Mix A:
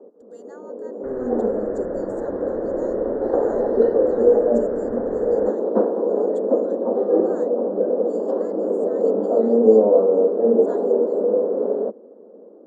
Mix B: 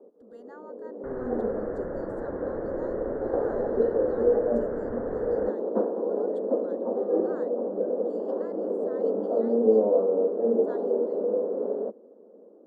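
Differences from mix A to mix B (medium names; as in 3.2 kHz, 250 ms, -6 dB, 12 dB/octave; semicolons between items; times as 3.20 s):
speech: remove resonant low-pass 7 kHz, resonance Q 5.8; first sound -7.0 dB; master: add distance through air 72 m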